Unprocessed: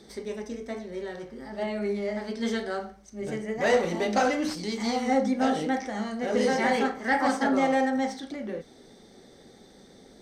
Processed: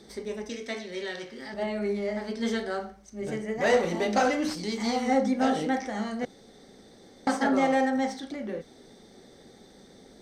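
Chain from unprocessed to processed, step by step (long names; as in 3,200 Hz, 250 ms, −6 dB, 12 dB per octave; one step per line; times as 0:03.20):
0:00.49–0:01.54: meter weighting curve D
0:06.25–0:07.27: fill with room tone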